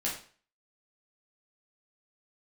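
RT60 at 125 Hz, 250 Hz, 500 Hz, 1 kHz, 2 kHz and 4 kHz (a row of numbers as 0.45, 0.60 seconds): 0.45, 0.40, 0.45, 0.40, 0.40, 0.40 seconds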